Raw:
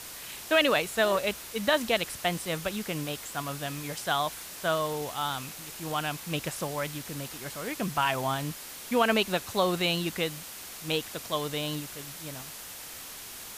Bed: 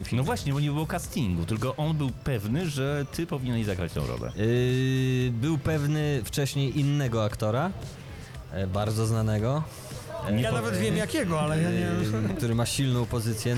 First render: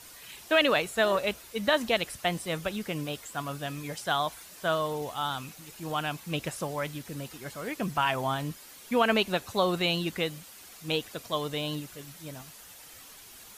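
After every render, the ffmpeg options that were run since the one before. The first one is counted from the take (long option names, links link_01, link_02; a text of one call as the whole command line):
ffmpeg -i in.wav -af "afftdn=noise_reduction=9:noise_floor=-43" out.wav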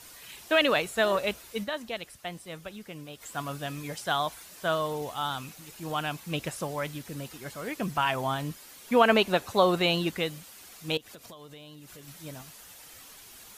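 ffmpeg -i in.wav -filter_complex "[0:a]asettb=1/sr,asplit=3[link_01][link_02][link_03];[link_01]atrim=end=8.884[link_04];[link_02]atrim=start=8.88:end=10.11,asetpts=PTS-STARTPTS,afade=type=in:duration=0.004:curve=qsin,afade=type=out:start_time=1.226:duration=0.004:curve=qsin,equalizer=frequency=690:width=0.39:gain=4.5[link_05];[link_03]atrim=start=10.106[link_06];[link_04][link_05]acrossfade=duration=0.004:curve1=hsin:curve2=qsin[link_07];[link_07][link_06]acrossfade=duration=0.004:curve1=qsin:curve2=hsin,asettb=1/sr,asplit=3[link_08][link_09][link_10];[link_08]atrim=end=10.974[link_11];[link_09]atrim=start=10.97:end=12.08,asetpts=PTS-STARTPTS,afade=type=in:duration=0.004:curve=qsin,afade=type=out:start_time=1.106:duration=0.004:curve=qsin,acompressor=threshold=-43dB:ratio=16:attack=3.2:release=140:knee=1:detection=peak[link_12];[link_10]atrim=start=12.076[link_13];[link_11][link_12]acrossfade=duration=0.004:curve1=hsin:curve2=qsin[link_14];[link_14][link_13]acrossfade=duration=0.004:curve1=qsin:curve2=hsin,asplit=3[link_15][link_16][link_17];[link_15]atrim=end=1.76,asetpts=PTS-STARTPTS,afade=type=out:start_time=1.63:duration=0.13:curve=exp:silence=0.354813[link_18];[link_16]atrim=start=1.76:end=3.09,asetpts=PTS-STARTPTS,volume=-9dB[link_19];[link_17]atrim=start=3.09,asetpts=PTS-STARTPTS,afade=type=in:duration=0.13:curve=exp:silence=0.354813[link_20];[link_18][link_19][link_20]concat=n=3:v=0:a=1" out.wav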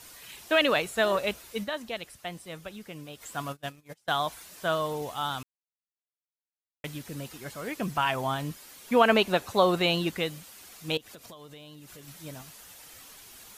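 ffmpeg -i in.wav -filter_complex "[0:a]asplit=3[link_01][link_02][link_03];[link_01]afade=type=out:start_time=3.51:duration=0.02[link_04];[link_02]agate=range=-29dB:threshold=-35dB:ratio=16:release=100:detection=peak,afade=type=in:start_time=3.51:duration=0.02,afade=type=out:start_time=4.18:duration=0.02[link_05];[link_03]afade=type=in:start_time=4.18:duration=0.02[link_06];[link_04][link_05][link_06]amix=inputs=3:normalize=0,asplit=3[link_07][link_08][link_09];[link_07]atrim=end=5.43,asetpts=PTS-STARTPTS,afade=type=out:start_time=5.426:duration=0.004:curve=hsin[link_10];[link_08]atrim=start=5.43:end=6.84,asetpts=PTS-STARTPTS,volume=0[link_11];[link_09]atrim=start=6.84,asetpts=PTS-STARTPTS,afade=type=in:duration=0.004:curve=hsin[link_12];[link_10][link_11][link_12]concat=n=3:v=0:a=1" out.wav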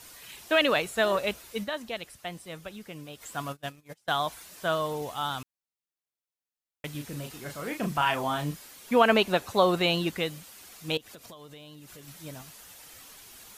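ffmpeg -i in.wav -filter_complex "[0:a]asettb=1/sr,asplit=3[link_01][link_02][link_03];[link_01]atrim=end=6.914[link_04];[link_02]atrim=start=6.91:end=8.68,asetpts=PTS-STARTPTS,afade=type=in:duration=0.004:curve=qsin,afade=type=out:start_time=1.766:duration=0.004:curve=qsin,asplit=2[link_05][link_06];[link_06]adelay=34,volume=-5.5dB[link_07];[link_05][link_07]amix=inputs=2:normalize=0,atrim=end_sample=78057[link_08];[link_03]atrim=start=8.676[link_09];[link_04][link_08]acrossfade=duration=0.004:curve1=hsin:curve2=qsin[link_10];[link_10][link_09]acrossfade=duration=0.004:curve1=qsin:curve2=hsin" out.wav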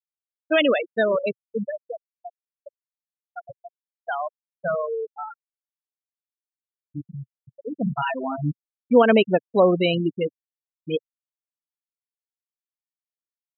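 ffmpeg -i in.wav -af "afftfilt=real='re*gte(hypot(re,im),0.141)':imag='im*gte(hypot(re,im),0.141)':win_size=1024:overlap=0.75,equalizer=frequency=125:width_type=o:width=1:gain=7,equalizer=frequency=250:width_type=o:width=1:gain=6,equalizer=frequency=500:width_type=o:width=1:gain=7,equalizer=frequency=1000:width_type=o:width=1:gain=-3,equalizer=frequency=2000:width_type=o:width=1:gain=4,equalizer=frequency=8000:width_type=o:width=1:gain=8" out.wav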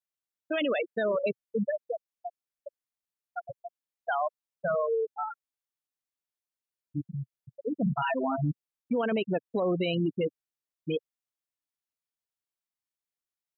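ffmpeg -i in.wav -af "acompressor=threshold=-20dB:ratio=6,alimiter=limit=-21dB:level=0:latency=1:release=12" out.wav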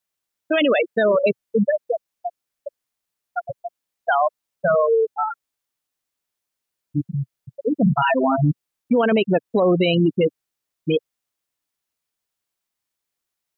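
ffmpeg -i in.wav -af "volume=10.5dB" out.wav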